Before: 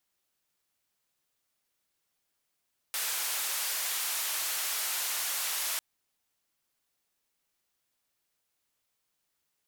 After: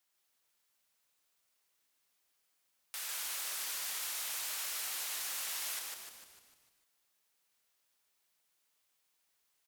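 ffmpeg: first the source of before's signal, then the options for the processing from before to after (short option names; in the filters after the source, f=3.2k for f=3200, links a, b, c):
-f lavfi -i "anoisesrc=c=white:d=2.85:r=44100:seed=1,highpass=f=800,lowpass=f=16000,volume=-26dB"
-filter_complex "[0:a]lowshelf=f=340:g=-11.5,alimiter=level_in=8.5dB:limit=-24dB:level=0:latency=1,volume=-8.5dB,asplit=2[a][b];[b]asplit=7[c][d][e][f][g][h][i];[c]adelay=150,afreqshift=-140,volume=-3.5dB[j];[d]adelay=300,afreqshift=-280,volume=-9.2dB[k];[e]adelay=450,afreqshift=-420,volume=-14.9dB[l];[f]adelay=600,afreqshift=-560,volume=-20.5dB[m];[g]adelay=750,afreqshift=-700,volume=-26.2dB[n];[h]adelay=900,afreqshift=-840,volume=-31.9dB[o];[i]adelay=1050,afreqshift=-980,volume=-37.6dB[p];[j][k][l][m][n][o][p]amix=inputs=7:normalize=0[q];[a][q]amix=inputs=2:normalize=0"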